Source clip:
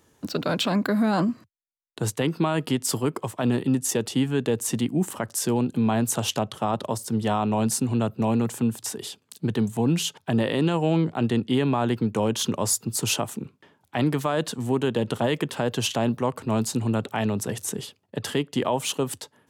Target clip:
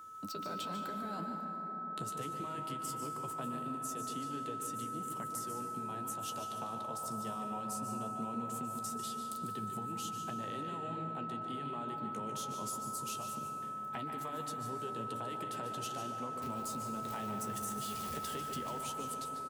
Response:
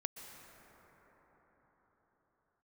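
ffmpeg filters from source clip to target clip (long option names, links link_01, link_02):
-filter_complex "[0:a]asettb=1/sr,asplit=3[link_01][link_02][link_03];[link_01]atrim=end=16.424[link_04];[link_02]atrim=start=16.42:end=18.81,asetpts=PTS-STARTPTS,afade=type=in:duration=0.004:curve=qsin,afade=type=out:start_time=2.386:duration=0.004:curve=qsin,aeval=exprs='val(0)+0.5*0.0316*sgn(val(0))':channel_layout=same[link_05];[link_03]atrim=start=18.806[link_06];[link_04][link_05]acrossfade=duration=0.004:curve1=hsin:curve2=qsin[link_07];[link_07][link_06]acrossfade=duration=0.004:curve1=qsin:curve2=hsin,highshelf=frequency=5700:gain=9.5,acompressor=threshold=-34dB:ratio=10,flanger=delay=9.1:depth=5.7:regen=42:speed=0.2:shape=triangular,aeval=exprs='val(0)+0.00631*sin(2*PI*1300*n/s)':channel_layout=same,aecho=1:1:147:0.316[link_08];[1:a]atrim=start_sample=2205[link_09];[link_08][link_09]afir=irnorm=-1:irlink=0,volume=-1dB"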